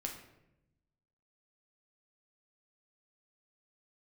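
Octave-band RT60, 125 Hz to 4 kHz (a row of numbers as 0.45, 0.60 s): 1.5, 1.3, 1.0, 0.75, 0.75, 0.55 s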